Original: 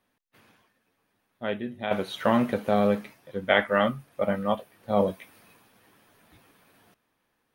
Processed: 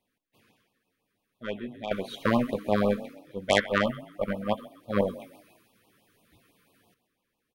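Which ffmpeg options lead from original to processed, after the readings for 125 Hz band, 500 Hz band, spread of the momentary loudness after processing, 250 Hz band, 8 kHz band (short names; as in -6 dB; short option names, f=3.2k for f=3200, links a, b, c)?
-1.0 dB, -2.5 dB, 13 LU, -2.0 dB, n/a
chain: -filter_complex "[0:a]asplit=5[a][b][c][d][e];[b]adelay=131,afreqshift=35,volume=-14dB[f];[c]adelay=262,afreqshift=70,volume=-22.2dB[g];[d]adelay=393,afreqshift=105,volume=-30.4dB[h];[e]adelay=524,afreqshift=140,volume=-38.5dB[i];[a][f][g][h][i]amix=inputs=5:normalize=0,aeval=exprs='0.596*(cos(1*acos(clip(val(0)/0.596,-1,1)))-cos(1*PI/2))+0.15*(cos(4*acos(clip(val(0)/0.596,-1,1)))-cos(4*PI/2))+0.0944*(cos(6*acos(clip(val(0)/0.596,-1,1)))-cos(6*PI/2))+0.0335*(cos(7*acos(clip(val(0)/0.596,-1,1)))-cos(7*PI/2))':c=same,afftfilt=real='re*(1-between(b*sr/1024,690*pow(1800/690,0.5+0.5*sin(2*PI*6*pts/sr))/1.41,690*pow(1800/690,0.5+0.5*sin(2*PI*6*pts/sr))*1.41))':imag='im*(1-between(b*sr/1024,690*pow(1800/690,0.5+0.5*sin(2*PI*6*pts/sr))/1.41,690*pow(1800/690,0.5+0.5*sin(2*PI*6*pts/sr))*1.41))':win_size=1024:overlap=0.75"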